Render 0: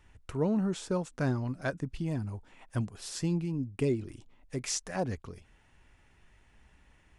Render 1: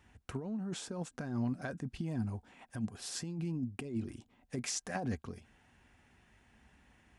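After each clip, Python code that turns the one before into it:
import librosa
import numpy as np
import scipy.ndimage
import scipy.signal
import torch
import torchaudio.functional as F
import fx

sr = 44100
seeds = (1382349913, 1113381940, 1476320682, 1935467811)

y = scipy.signal.sosfilt(scipy.signal.butter(2, 58.0, 'highpass', fs=sr, output='sos'), x)
y = fx.over_compress(y, sr, threshold_db=-34.0, ratio=-1.0)
y = fx.small_body(y, sr, hz=(230.0, 740.0, 1600.0), ring_ms=70, db=8)
y = y * librosa.db_to_amplitude(-4.5)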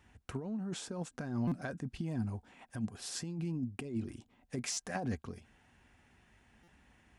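y = fx.buffer_glitch(x, sr, at_s=(1.47, 4.72, 6.63), block=256, repeats=7)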